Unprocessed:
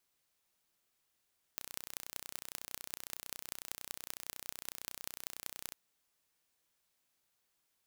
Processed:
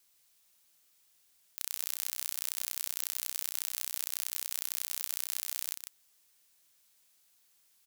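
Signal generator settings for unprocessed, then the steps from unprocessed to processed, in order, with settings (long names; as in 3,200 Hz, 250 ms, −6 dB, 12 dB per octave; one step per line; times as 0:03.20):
impulse train 30.9 per second, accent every 6, −11 dBFS 4.15 s
high-shelf EQ 2,400 Hz +11 dB
compressor whose output falls as the input rises −36 dBFS, ratio −0.5
on a send: single-tap delay 149 ms −7.5 dB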